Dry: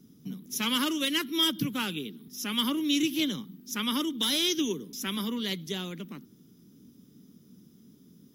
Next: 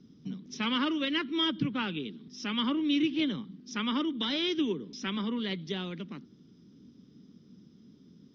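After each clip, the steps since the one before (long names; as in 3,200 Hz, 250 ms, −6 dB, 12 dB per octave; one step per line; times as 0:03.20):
treble cut that deepens with the level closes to 2,800 Hz, closed at −28.5 dBFS
Butterworth low-pass 5,600 Hz 48 dB per octave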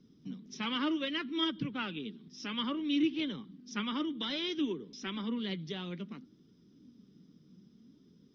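flanger 0.61 Hz, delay 1.8 ms, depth 5.1 ms, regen +60%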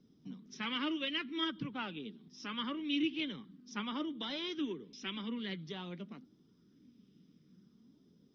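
auto-filter bell 0.49 Hz 660–2,800 Hz +7 dB
level −4.5 dB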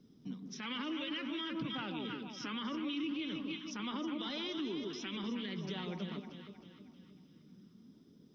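delay that swaps between a low-pass and a high-pass 157 ms, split 980 Hz, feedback 67%, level −5.5 dB
brickwall limiter −34.5 dBFS, peak gain reduction 11.5 dB
level +3.5 dB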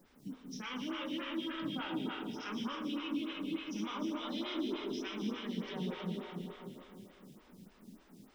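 background noise pink −66 dBFS
dense smooth reverb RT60 3.1 s, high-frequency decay 0.8×, DRR −1.5 dB
phaser with staggered stages 3.4 Hz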